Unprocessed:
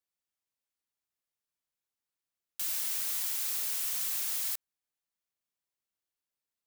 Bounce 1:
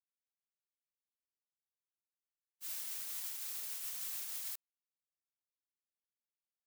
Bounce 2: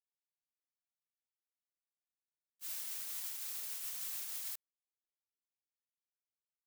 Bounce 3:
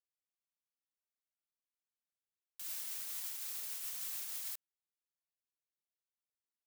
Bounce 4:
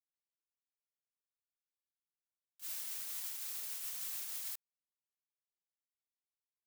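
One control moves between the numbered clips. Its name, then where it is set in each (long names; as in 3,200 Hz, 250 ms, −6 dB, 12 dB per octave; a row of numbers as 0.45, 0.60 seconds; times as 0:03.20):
noise gate, range: −57, −42, −12, −26 decibels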